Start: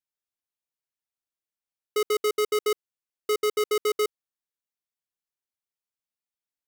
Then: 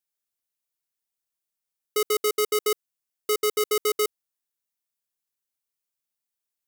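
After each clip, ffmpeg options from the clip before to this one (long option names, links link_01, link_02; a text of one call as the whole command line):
ffmpeg -i in.wav -af "highshelf=frequency=5700:gain=9" out.wav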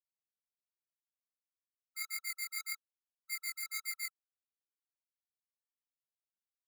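ffmpeg -i in.wav -af "agate=range=-33dB:threshold=-16dB:ratio=3:detection=peak,flanger=delay=18.5:depth=4.4:speed=1.8,afftfilt=real='re*eq(mod(floor(b*sr/1024/1300),2),1)':imag='im*eq(mod(floor(b*sr/1024/1300),2),1)':win_size=1024:overlap=0.75,volume=7.5dB" out.wav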